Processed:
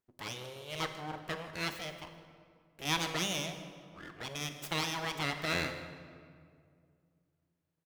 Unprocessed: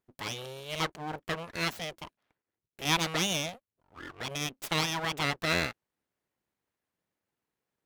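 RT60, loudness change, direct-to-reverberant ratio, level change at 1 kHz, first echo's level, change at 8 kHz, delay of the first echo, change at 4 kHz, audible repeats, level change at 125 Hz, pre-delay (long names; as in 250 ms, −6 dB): 2.2 s, −4.5 dB, 7.0 dB, −4.0 dB, −16.5 dB, −4.5 dB, 156 ms, −4.5 dB, 1, −4.0 dB, 19 ms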